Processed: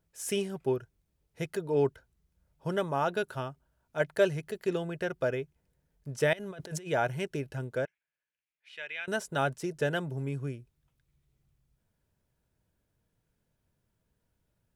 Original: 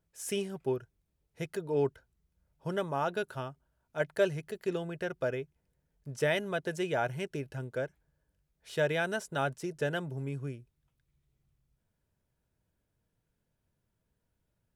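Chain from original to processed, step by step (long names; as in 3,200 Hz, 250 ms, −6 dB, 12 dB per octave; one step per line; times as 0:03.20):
0:06.33–0:06.88: compressor whose output falls as the input rises −44 dBFS, ratio −1
0:07.85–0:09.08: resonant band-pass 2,400 Hz, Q 3.3
level +2.5 dB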